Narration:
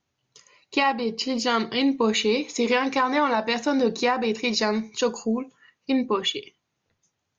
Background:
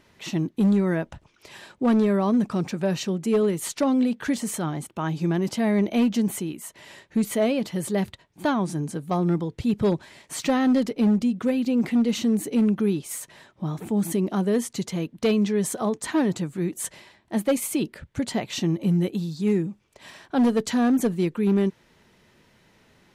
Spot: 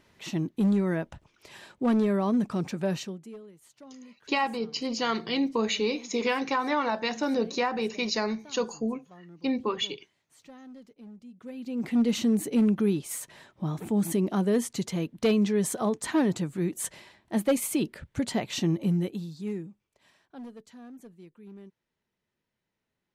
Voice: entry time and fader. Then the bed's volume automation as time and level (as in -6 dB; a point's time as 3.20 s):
3.55 s, -5.0 dB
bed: 2.96 s -4 dB
3.44 s -27 dB
11.20 s -27 dB
12.01 s -2 dB
18.75 s -2 dB
20.71 s -26 dB